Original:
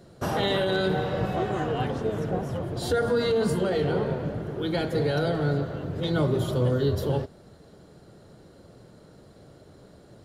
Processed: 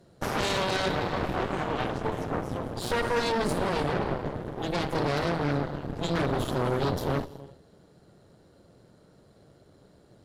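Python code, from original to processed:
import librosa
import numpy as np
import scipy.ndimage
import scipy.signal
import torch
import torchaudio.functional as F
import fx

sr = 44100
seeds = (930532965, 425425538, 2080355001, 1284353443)

y = fx.quant_dither(x, sr, seeds[0], bits=12, dither='triangular', at=(3.2, 3.66))
y = fx.rev_gated(y, sr, seeds[1], gate_ms=390, shape='flat', drr_db=11.0)
y = fx.cheby_harmonics(y, sr, harmonics=(6,), levels_db=(-7,), full_scale_db=-12.5)
y = y * librosa.db_to_amplitude(-6.5)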